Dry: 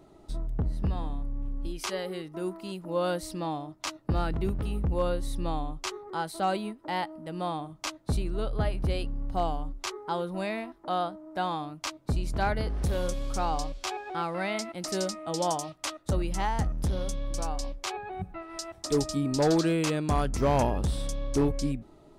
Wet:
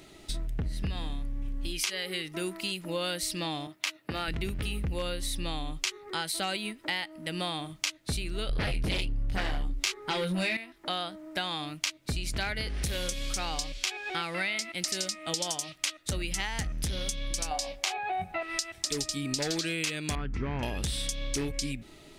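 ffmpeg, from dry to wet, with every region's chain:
-filter_complex "[0:a]asettb=1/sr,asplit=3[a][b][c];[a]atrim=end=3.674[d];[b]atrim=start=3.67:end=4.28,asetpts=PTS-STARTPTS,afade=t=in:d=0.004:c=qsin,afade=t=out:st=0.606:d=0.004:c=qsin,highpass=f=360:p=1,equalizer=f=6.3k:w=0.73:g=-8[e];[c]atrim=start=4.276[f];[d][e]acrossfade=d=0.004:c1=hsin:c2=qsin[g];[g][f]acrossfade=d=0.004:c1=qsin:c2=hsin,asettb=1/sr,asplit=3[h][i][j];[h]atrim=end=8.494[k];[i]atrim=start=8.49:end=10.57,asetpts=PTS-STARTPTS,afade=t=in:d=0.004:c=qsin,afade=t=out:st=2.076:d=0.004:c=qsin,lowshelf=f=360:g=7,flanger=delay=20:depth=2.3:speed=1.3,aeval=exprs='0.2*sin(PI/2*2.82*val(0)/0.2)':c=same[l];[j]atrim=start=10.566[m];[k][l]acrossfade=d=0.004:c1=hsin:c2=qsin[n];[n][m]acrossfade=d=0.004:c1=qsin:c2=hsin,asettb=1/sr,asplit=3[o][p][q];[o]atrim=end=17.514[r];[p]atrim=start=17.51:end=18.43,asetpts=PTS-STARTPTS,afade=t=in:d=0.004:c=qsin,afade=t=out:st=0.916:d=0.004:c=qsin,highpass=f=100:p=1,equalizer=f=740:w=1.8:g=14.5,asplit=2[s][t];[t]adelay=23,volume=-9.5dB[u];[s][u]amix=inputs=2:normalize=0,atrim=end_sample=40572[v];[q]atrim=start=18.426[w];[r][v]acrossfade=d=0.004:c1=hsin:c2=qsin[x];[x][w]acrossfade=d=0.004:c1=qsin:c2=hsin,asettb=1/sr,asplit=3[y][z][aa];[y]atrim=end=20.154[ab];[z]atrim=start=20.15:end=20.63,asetpts=PTS-STARTPTS,afade=t=in:d=0.004:c=qsin,afade=t=out:st=0.476:d=0.004:c=qsin,lowpass=1.2k,equalizer=f=610:t=o:w=0.53:g=-13[ac];[aa]atrim=start=20.626[ad];[ab][ac]acrossfade=d=0.004:c1=hsin:c2=qsin[ae];[ae][ad]acrossfade=d=0.004:c1=qsin:c2=hsin,highshelf=f=1.5k:t=q:w=1.5:g=12.5,acompressor=threshold=-31dB:ratio=6,volume=2dB"

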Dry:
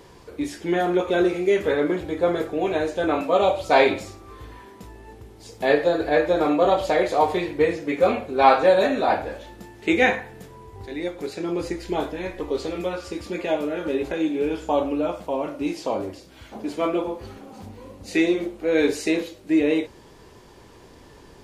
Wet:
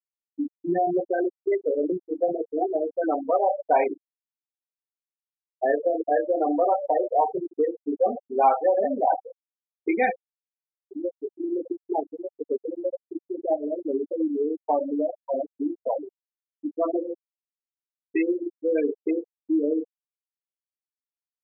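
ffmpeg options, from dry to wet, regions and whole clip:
-filter_complex "[0:a]asettb=1/sr,asplit=3[a][b][c];[a]atrim=end=1.054[d];[b]atrim=start=1.05:end=1.52,asetpts=PTS-STARTPTS,afade=t=in:d=0.004:c=qsin,afade=t=out:st=0.466:d=0.004:c=qsin,lowshelf=f=310:g=-8.5,acrusher=bits=3:mix=0:aa=0.5[e];[c]atrim=start=1.516[f];[d][e]acrossfade=d=0.004:c1=hsin:c2=qsin[g];[g][f]acrossfade=d=0.004:c1=qsin:c2=hsin,afftfilt=real='re*gte(hypot(re,im),0.282)':imag='im*gte(hypot(re,im),0.282)':win_size=1024:overlap=0.75,equalizer=f=750:t=o:w=0.56:g=7.5,acompressor=threshold=-23dB:ratio=2"

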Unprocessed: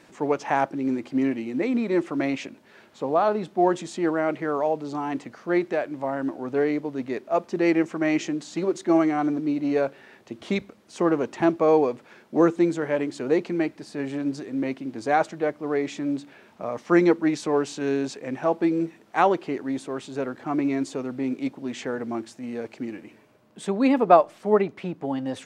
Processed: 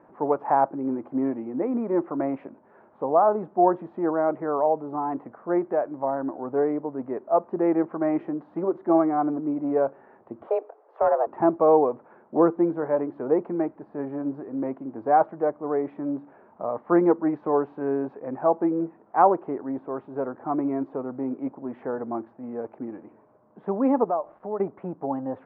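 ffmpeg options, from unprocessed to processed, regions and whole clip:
-filter_complex "[0:a]asettb=1/sr,asplit=3[a][b][c];[a]atrim=end=10.474[d];[b]atrim=start=10.47:end=11.27,asetpts=PTS-STARTPTS,afade=t=in:d=0.004:c=qsin,afade=t=out:st=0.796:d=0.004:c=qsin,afreqshift=220,asoftclip=type=hard:threshold=-16.5dB[e];[c]atrim=start=11.266[f];[d][e]acrossfade=d=0.004:c1=hsin:c2=qsin[g];[g][f]acrossfade=d=0.004:c1=qsin:c2=hsin,asettb=1/sr,asplit=3[h][i][j];[h]atrim=end=24.044[k];[i]atrim=start=24.04:end=24.6,asetpts=PTS-STARTPTS,afade=t=in:d=0.004:c=qsin,afade=t=out:st=0.556:d=0.004:c=qsin,acrusher=bits=7:mix=0:aa=0.5,acompressor=threshold=-35dB:ratio=2:attack=3.2:release=140:knee=1:detection=peak[l];[j]atrim=start=24.596[m];[k][l]acrossfade=d=0.004:c1=hsin:c2=qsin[n];[n][m]acrossfade=d=0.004:c1=qsin:c2=hsin,lowpass=f=1k:w=0.5412,lowpass=f=1k:w=1.3066,tiltshelf=f=680:g=-7.5,volume=3dB"

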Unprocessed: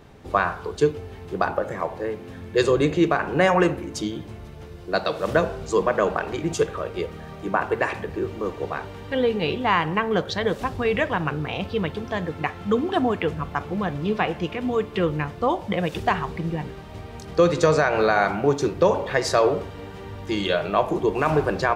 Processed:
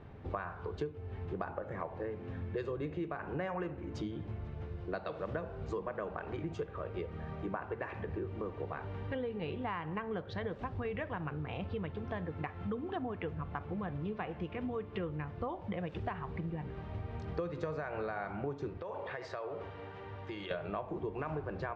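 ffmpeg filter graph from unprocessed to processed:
-filter_complex "[0:a]asettb=1/sr,asplit=3[a][b][c];[a]atrim=end=18.774[d];[b]atrim=start=18.77:end=20.51,asetpts=PTS-STARTPTS,afade=t=in:d=0.004:c=qsin,afade=t=out:st=1.736:d=0.004:c=qsin,equalizer=f=210:t=o:w=1.5:g=-10.5,acompressor=threshold=-31dB:ratio=5:attack=3.2:release=140:knee=1:detection=peak,highpass=140,lowpass=7.9k[e];[c]atrim=start=20.506[f];[d][e]acrossfade=d=0.004:c1=hsin:c2=qsin[g];[g][f]acrossfade=d=0.004:c1=qsin:c2=hsin,lowpass=2.4k,equalizer=f=92:w=1.2:g=7,acompressor=threshold=-30dB:ratio=6,volume=-5.5dB"

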